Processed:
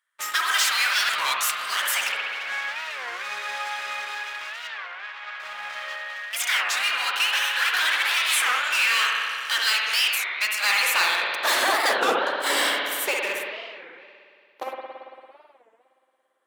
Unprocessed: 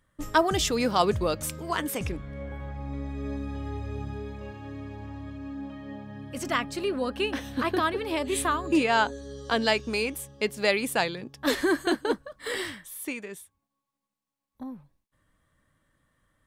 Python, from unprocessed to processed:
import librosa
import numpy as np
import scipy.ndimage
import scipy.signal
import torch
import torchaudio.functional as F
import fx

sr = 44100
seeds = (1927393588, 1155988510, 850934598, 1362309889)

p1 = fx.spec_gate(x, sr, threshold_db=-10, keep='weak')
p2 = fx.fuzz(p1, sr, gain_db=42.0, gate_db=-49.0)
p3 = p1 + (p2 * 10.0 ** (-5.5 / 20.0))
p4 = fx.filter_sweep_highpass(p3, sr, from_hz=1500.0, to_hz=430.0, start_s=10.46, end_s=11.67, q=1.3)
p5 = fx.bandpass_edges(p4, sr, low_hz=330.0, high_hz=3800.0, at=(4.69, 5.4))
p6 = fx.rev_spring(p5, sr, rt60_s=2.3, pass_ms=(56,), chirp_ms=45, drr_db=-1.0)
p7 = fx.record_warp(p6, sr, rpm=33.33, depth_cents=250.0)
y = p7 * 10.0 ** (-4.5 / 20.0)